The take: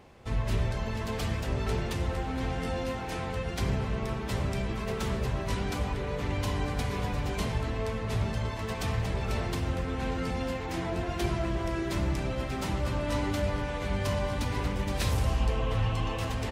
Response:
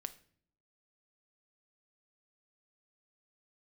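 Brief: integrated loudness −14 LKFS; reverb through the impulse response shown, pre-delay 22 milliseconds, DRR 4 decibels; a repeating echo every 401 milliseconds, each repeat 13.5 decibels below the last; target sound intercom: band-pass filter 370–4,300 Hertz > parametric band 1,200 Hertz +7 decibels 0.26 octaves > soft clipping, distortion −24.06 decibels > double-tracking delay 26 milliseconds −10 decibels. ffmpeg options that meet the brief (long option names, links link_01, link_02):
-filter_complex "[0:a]aecho=1:1:401|802:0.211|0.0444,asplit=2[link_01][link_02];[1:a]atrim=start_sample=2205,adelay=22[link_03];[link_02][link_03]afir=irnorm=-1:irlink=0,volume=-1.5dB[link_04];[link_01][link_04]amix=inputs=2:normalize=0,highpass=370,lowpass=4300,equalizer=frequency=1200:width_type=o:width=0.26:gain=7,asoftclip=threshold=-22.5dB,asplit=2[link_05][link_06];[link_06]adelay=26,volume=-10dB[link_07];[link_05][link_07]amix=inputs=2:normalize=0,volume=20.5dB"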